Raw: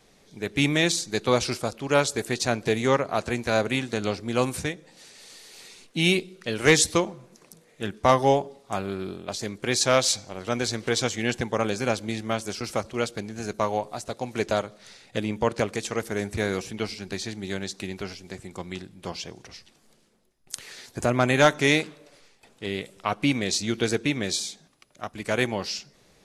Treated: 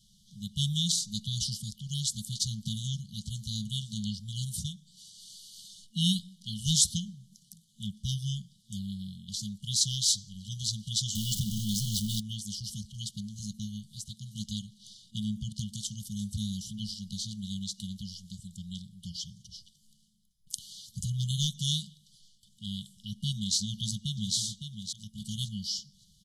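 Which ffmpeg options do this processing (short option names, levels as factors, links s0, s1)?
-filter_complex "[0:a]asettb=1/sr,asplit=3[s0][s1][s2];[s0]atrim=end=11.154[s3];[s1]atrim=start=11.15:end=12.2,asetpts=PTS-STARTPTS,afade=t=in:d=0.004:c=qsin,afade=t=out:st=1.046:d=0.004:c=qsin,aeval=exprs='val(0)+0.5*0.0596*sgn(val(0))':c=same[s4];[s2]atrim=start=12.196[s5];[s3][s4]acrossfade=d=0.004:c1=hsin:c2=qsin[s6];[s6][s5]acrossfade=d=0.004:c1=qsin:c2=hsin,asplit=2[s7][s8];[s8]afade=t=in:st=23.61:d=0.01,afade=t=out:st=24.36:d=0.01,aecho=0:1:560|1120|1680:0.421697|0.0843393|0.0168679[s9];[s7][s9]amix=inputs=2:normalize=0,afftfilt=real='re*(1-between(b*sr/4096,220,2900))':imag='im*(1-between(b*sr/4096,220,2900))':win_size=4096:overlap=0.75,volume=0.841"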